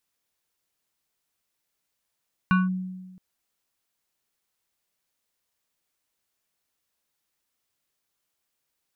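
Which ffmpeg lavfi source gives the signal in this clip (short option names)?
-f lavfi -i "aevalsrc='0.178*pow(10,-3*t/1.29)*sin(2*PI*185*t+0.91*clip(1-t/0.18,0,1)*sin(2*PI*7.02*185*t))':d=0.67:s=44100"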